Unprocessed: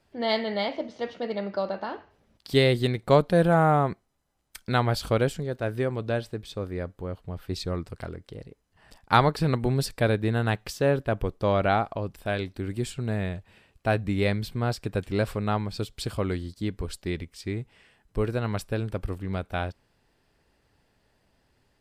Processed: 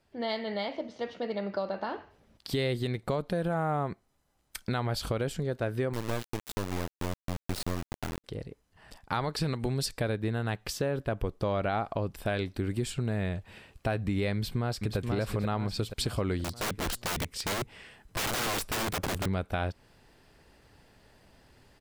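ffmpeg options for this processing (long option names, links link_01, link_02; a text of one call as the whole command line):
ffmpeg -i in.wav -filter_complex "[0:a]asettb=1/sr,asplit=3[link_01][link_02][link_03];[link_01]atrim=end=5.934[link_04];[link_02]atrim=start=5.93:end=8.24,asetpts=PTS-STARTPTS,afade=type=in:duration=0.004:curve=qsin,afade=type=out:start_time=2.306:duration=0.004:curve=qsin,acrusher=bits=3:dc=4:mix=0:aa=0.000001[link_05];[link_03]atrim=start=8.236[link_06];[link_04][link_05]acrossfade=duration=0.004:curve1=hsin:curve2=qsin[link_07];[link_07][link_06]acrossfade=duration=0.004:curve1=qsin:curve2=hsin,asettb=1/sr,asplit=3[link_08][link_09][link_10];[link_08]atrim=end=9.244[link_11];[link_09]atrim=start=9.24:end=9.98,asetpts=PTS-STARTPTS,afade=type=in:duration=0.004:curve=qsin,afade=type=out:start_time=0.736:duration=0.004:curve=qsin,equalizer=frequency=6000:width=0.44:gain=6.5[link_12];[link_10]atrim=start=9.976[link_13];[link_11][link_12]acrossfade=duration=0.004:curve1=hsin:curve2=qsin[link_14];[link_14][link_13]acrossfade=duration=0.004:curve1=qsin:curve2=hsin,asplit=2[link_15][link_16];[link_16]afade=type=in:start_time=14.33:duration=0.01,afade=type=out:start_time=14.97:duration=0.01,aecho=0:1:480|960|1440|1920|2400:0.446684|0.178673|0.0714694|0.0285877|0.0114351[link_17];[link_15][link_17]amix=inputs=2:normalize=0,asettb=1/sr,asplit=3[link_18][link_19][link_20];[link_18]atrim=end=16.444[link_21];[link_19]atrim=start=16.44:end=19.26,asetpts=PTS-STARTPTS,afade=type=in:duration=0.004:curve=qsin,afade=type=out:start_time=2.816:duration=0.004:curve=qsin,aeval=exprs='(mod(37.6*val(0)+1,2)-1)/37.6':channel_layout=same[link_22];[link_20]atrim=start=19.256[link_23];[link_21][link_22]acrossfade=duration=0.004:curve1=hsin:curve2=qsin[link_24];[link_24][link_23]acrossfade=duration=0.004:curve1=qsin:curve2=hsin,dynaudnorm=framelen=240:gausssize=13:maxgain=11.5dB,alimiter=limit=-9dB:level=0:latency=1:release=69,acompressor=threshold=-27dB:ratio=2.5,volume=-3dB" out.wav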